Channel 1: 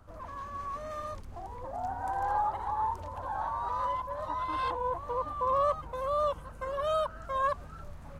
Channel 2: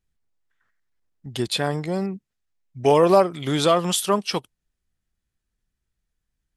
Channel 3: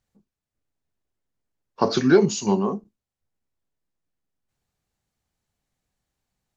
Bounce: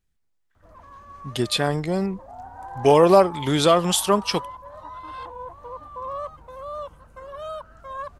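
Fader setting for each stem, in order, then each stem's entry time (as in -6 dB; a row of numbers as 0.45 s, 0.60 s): -4.5 dB, +1.5 dB, mute; 0.55 s, 0.00 s, mute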